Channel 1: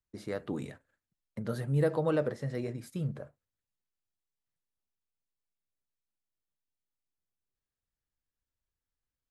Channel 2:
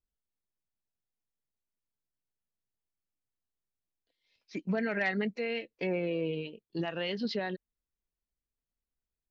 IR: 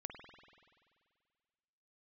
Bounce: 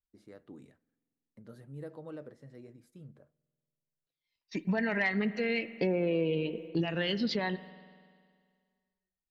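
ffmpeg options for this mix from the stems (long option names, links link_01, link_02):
-filter_complex "[0:a]equalizer=frequency=290:width=1.6:gain=5.5,volume=-18.5dB,asplit=2[link_01][link_02];[link_02]volume=-18.5dB[link_03];[1:a]aphaser=in_gain=1:out_gain=1:delay=1.1:decay=0.48:speed=0.32:type=sinusoidal,agate=range=-17dB:threshold=-55dB:ratio=16:detection=peak,volume=2dB,asplit=2[link_04][link_05];[link_05]volume=-6dB[link_06];[2:a]atrim=start_sample=2205[link_07];[link_03][link_06]amix=inputs=2:normalize=0[link_08];[link_08][link_07]afir=irnorm=-1:irlink=0[link_09];[link_01][link_04][link_09]amix=inputs=3:normalize=0,acompressor=threshold=-26dB:ratio=5"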